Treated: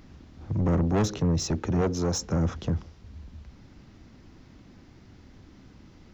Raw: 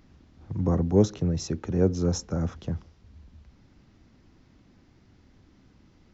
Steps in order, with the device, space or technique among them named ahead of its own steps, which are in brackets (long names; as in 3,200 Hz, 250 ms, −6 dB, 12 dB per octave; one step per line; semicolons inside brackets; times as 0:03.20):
0:01.81–0:02.21: low-shelf EQ 230 Hz −9 dB
saturation between pre-emphasis and de-emphasis (high-shelf EQ 6,700 Hz +10 dB; soft clipping −26.5 dBFS, distortion −6 dB; high-shelf EQ 6,700 Hz −10 dB)
level +6.5 dB